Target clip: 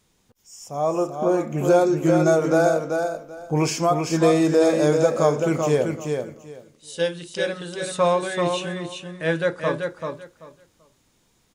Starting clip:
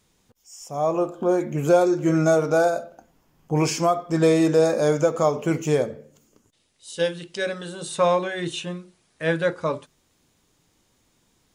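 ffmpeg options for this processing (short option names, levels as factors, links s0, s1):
-af "aecho=1:1:386|772|1158:0.562|0.107|0.0203"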